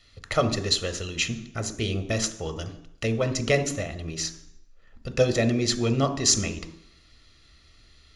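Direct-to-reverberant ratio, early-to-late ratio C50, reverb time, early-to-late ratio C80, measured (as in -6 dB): 9.0 dB, 13.0 dB, 0.70 s, 16.0 dB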